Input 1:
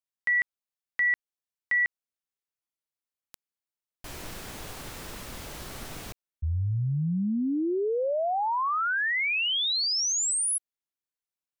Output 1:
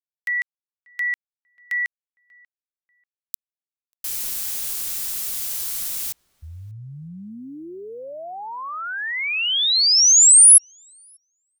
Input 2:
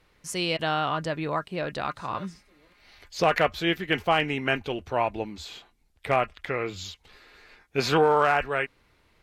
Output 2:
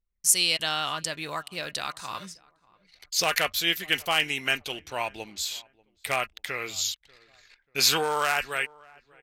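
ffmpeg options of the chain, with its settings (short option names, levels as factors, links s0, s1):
-filter_complex "[0:a]anlmdn=0.00398,highshelf=f=3800:g=7,crystalizer=i=9.5:c=0,asplit=2[s0][s1];[s1]adelay=589,lowpass=f=1400:p=1,volume=0.0631,asplit=2[s2][s3];[s3]adelay=589,lowpass=f=1400:p=1,volume=0.34[s4];[s2][s4]amix=inputs=2:normalize=0[s5];[s0][s5]amix=inputs=2:normalize=0,volume=0.316"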